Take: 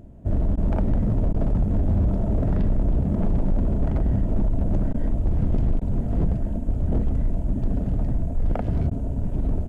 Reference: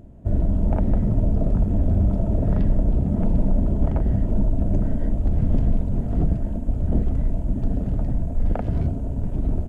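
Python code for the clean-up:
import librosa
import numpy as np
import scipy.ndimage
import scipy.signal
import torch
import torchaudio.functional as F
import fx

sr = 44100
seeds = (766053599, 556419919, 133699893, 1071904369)

y = fx.fix_declip(x, sr, threshold_db=-16.0)
y = fx.fix_interpolate(y, sr, at_s=(0.56, 1.33, 4.93, 5.8, 8.9), length_ms=12.0)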